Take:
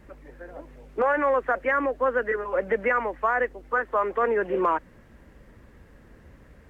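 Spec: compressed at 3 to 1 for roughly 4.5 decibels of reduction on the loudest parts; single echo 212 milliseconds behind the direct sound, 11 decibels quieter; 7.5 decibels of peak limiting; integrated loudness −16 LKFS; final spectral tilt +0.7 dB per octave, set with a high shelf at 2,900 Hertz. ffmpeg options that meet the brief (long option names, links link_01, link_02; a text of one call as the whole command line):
ffmpeg -i in.wav -af "highshelf=frequency=2900:gain=4.5,acompressor=threshold=-24dB:ratio=3,alimiter=limit=-22.5dB:level=0:latency=1,aecho=1:1:212:0.282,volume=16dB" out.wav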